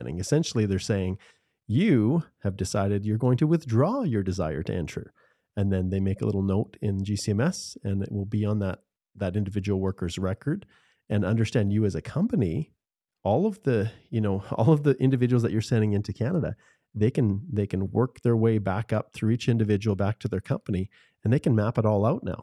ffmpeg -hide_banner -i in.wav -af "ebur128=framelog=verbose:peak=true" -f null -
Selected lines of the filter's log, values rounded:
Integrated loudness:
  I:         -26.3 LUFS
  Threshold: -36.6 LUFS
Loudness range:
  LRA:         3.8 LU
  Threshold: -46.8 LUFS
  LRA low:   -28.8 LUFS
  LRA high:  -25.0 LUFS
True peak:
  Peak:       -9.1 dBFS